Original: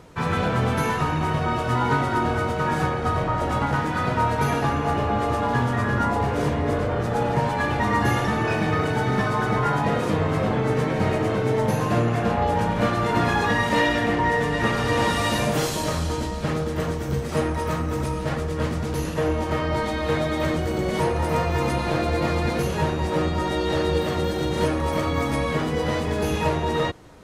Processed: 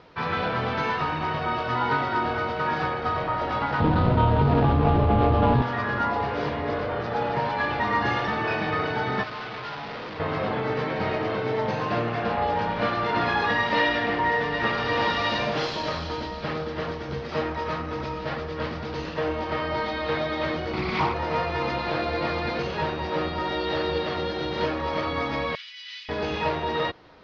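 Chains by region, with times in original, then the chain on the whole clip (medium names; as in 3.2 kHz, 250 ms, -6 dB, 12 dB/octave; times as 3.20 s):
3.80–5.62 s: median filter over 25 samples + RIAA curve playback + level flattener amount 70%
9.23–10.20 s: high-pass 46 Hz + overload inside the chain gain 31 dB
20.73–21.14 s: comb 0.9 ms, depth 97% + loudspeaker Doppler distortion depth 0.34 ms
25.55–26.09 s: inverse Chebyshev high-pass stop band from 560 Hz, stop band 70 dB + short-mantissa float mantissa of 4-bit
whole clip: steep low-pass 5.1 kHz 48 dB/octave; bass shelf 320 Hz -10.5 dB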